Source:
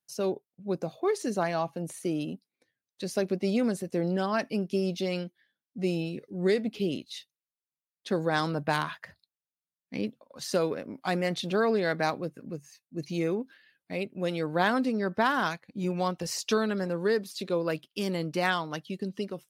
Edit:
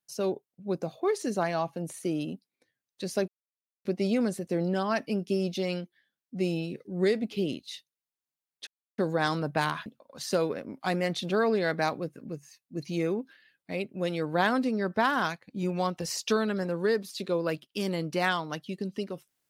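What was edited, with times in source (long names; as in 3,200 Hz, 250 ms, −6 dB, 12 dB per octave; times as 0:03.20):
0:03.28: splice in silence 0.57 s
0:08.10: splice in silence 0.31 s
0:08.98–0:10.07: remove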